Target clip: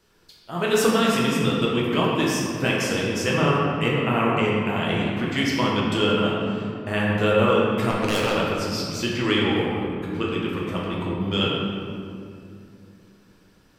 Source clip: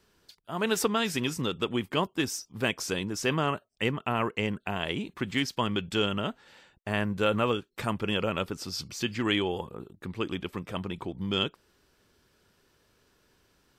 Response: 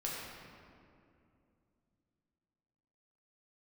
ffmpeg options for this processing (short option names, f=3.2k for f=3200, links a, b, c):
-filter_complex "[0:a]asplit=3[a][b][c];[a]afade=t=out:st=7.89:d=0.02[d];[b]acrusher=bits=3:mix=0:aa=0.5,afade=t=in:st=7.89:d=0.02,afade=t=out:st=8.34:d=0.02[e];[c]afade=t=in:st=8.34:d=0.02[f];[d][e][f]amix=inputs=3:normalize=0[g];[1:a]atrim=start_sample=2205[h];[g][h]afir=irnorm=-1:irlink=0,volume=4.5dB"